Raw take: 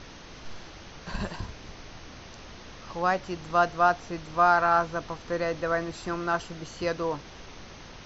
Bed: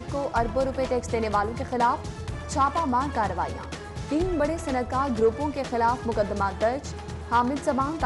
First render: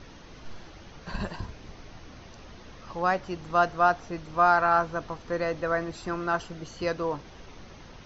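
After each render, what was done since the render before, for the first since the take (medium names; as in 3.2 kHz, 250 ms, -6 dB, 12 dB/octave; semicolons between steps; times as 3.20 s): noise reduction 6 dB, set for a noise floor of -46 dBFS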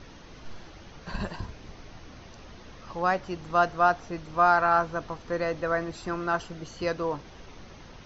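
no audible change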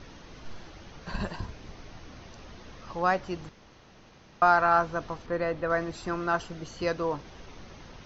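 3.49–4.42 s: room tone; 5.26–5.70 s: distance through air 160 m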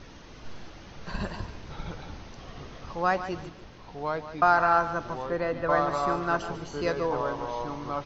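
feedback delay 145 ms, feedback 28%, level -12 dB; ever faster or slower copies 431 ms, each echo -3 st, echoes 3, each echo -6 dB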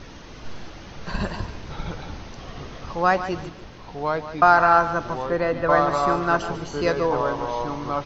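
trim +6 dB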